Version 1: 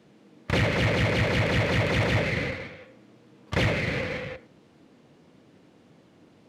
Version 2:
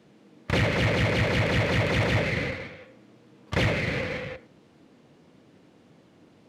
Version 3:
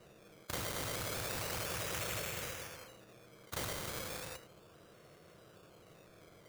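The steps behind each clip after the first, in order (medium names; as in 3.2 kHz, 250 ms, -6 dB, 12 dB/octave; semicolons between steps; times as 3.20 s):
no audible change
static phaser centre 1.3 kHz, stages 8; decimation with a swept rate 13×, swing 60% 0.34 Hz; spectrum-flattening compressor 2:1; trim -8 dB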